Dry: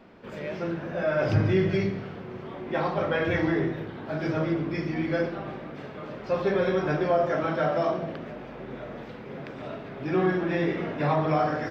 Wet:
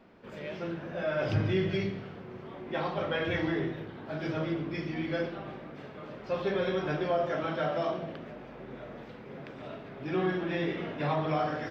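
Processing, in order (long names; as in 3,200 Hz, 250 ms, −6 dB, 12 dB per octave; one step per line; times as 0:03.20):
dynamic equaliser 3,200 Hz, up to +7 dB, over −53 dBFS, Q 2.1
level −5.5 dB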